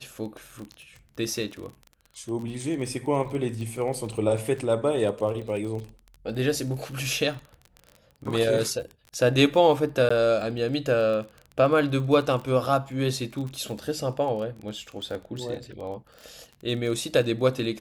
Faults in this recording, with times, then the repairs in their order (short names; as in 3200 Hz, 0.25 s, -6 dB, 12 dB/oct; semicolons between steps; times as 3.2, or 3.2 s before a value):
crackle 27/s -33 dBFS
10.09–10.11 gap 15 ms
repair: de-click; interpolate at 10.09, 15 ms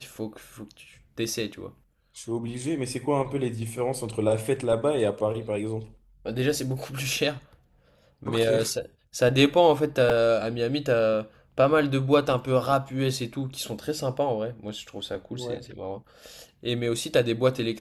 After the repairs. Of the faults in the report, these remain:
none